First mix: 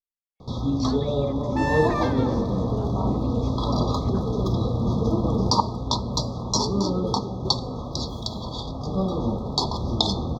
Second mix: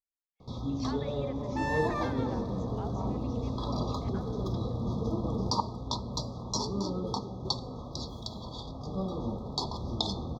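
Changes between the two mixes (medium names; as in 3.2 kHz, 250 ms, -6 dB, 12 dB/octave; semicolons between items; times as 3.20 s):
speech: send +10.0 dB; first sound -9.0 dB; second sound -6.5 dB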